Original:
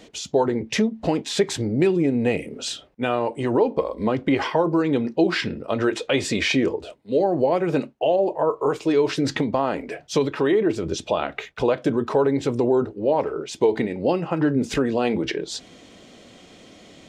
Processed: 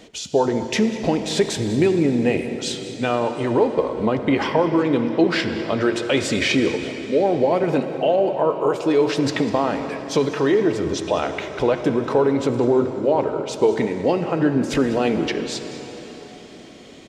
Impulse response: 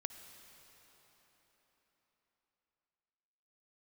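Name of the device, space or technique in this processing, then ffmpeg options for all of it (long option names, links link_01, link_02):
cave: -filter_complex "[0:a]aecho=1:1:198:0.141[link_01];[1:a]atrim=start_sample=2205[link_02];[link_01][link_02]afir=irnorm=-1:irlink=0,volume=4dB"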